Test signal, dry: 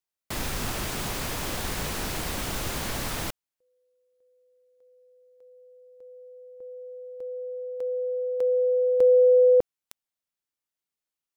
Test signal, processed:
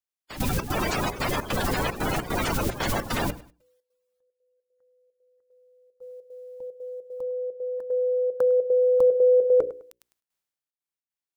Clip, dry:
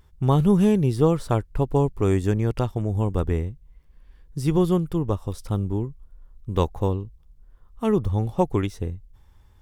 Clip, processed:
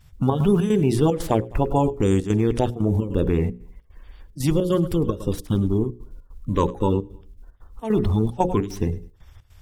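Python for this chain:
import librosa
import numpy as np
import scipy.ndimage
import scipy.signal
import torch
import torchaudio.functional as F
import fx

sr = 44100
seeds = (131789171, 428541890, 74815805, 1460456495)

p1 = fx.spec_quant(x, sr, step_db=30)
p2 = p1 + fx.echo_feedback(p1, sr, ms=103, feedback_pct=30, wet_db=-19.0, dry=0)
p3 = fx.step_gate(p2, sr, bpm=150, pattern='xxx.xx.x', floor_db=-12.0, edge_ms=4.5)
p4 = fx.hum_notches(p3, sr, base_hz=60, count=9)
p5 = fx.gate_hold(p4, sr, open_db=-46.0, close_db=-58.0, hold_ms=227.0, range_db=-11, attack_ms=10.0, release_ms=275.0)
p6 = fx.over_compress(p5, sr, threshold_db=-26.0, ratio=-1.0)
y = p5 + (p6 * 10.0 ** (-2.0 / 20.0))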